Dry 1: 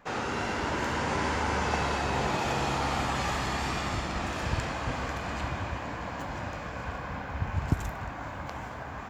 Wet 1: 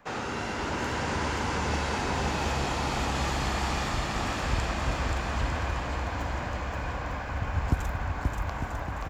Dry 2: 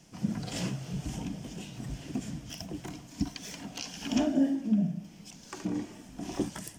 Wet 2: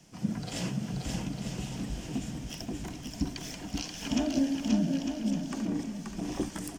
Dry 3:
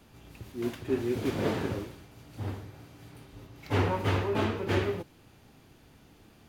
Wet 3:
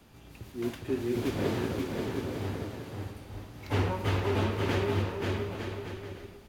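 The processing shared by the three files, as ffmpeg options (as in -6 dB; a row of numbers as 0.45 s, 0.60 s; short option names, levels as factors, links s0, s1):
-filter_complex "[0:a]asubboost=boost=3:cutoff=64,acrossover=split=300|3000[s0][s1][s2];[s1]acompressor=threshold=0.0282:ratio=6[s3];[s0][s3][s2]amix=inputs=3:normalize=0,asplit=2[s4][s5];[s5]aecho=0:1:530|901|1161|1342|1470:0.631|0.398|0.251|0.158|0.1[s6];[s4][s6]amix=inputs=2:normalize=0"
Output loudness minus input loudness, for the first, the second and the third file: +1.0 LU, +0.5 LU, -1.5 LU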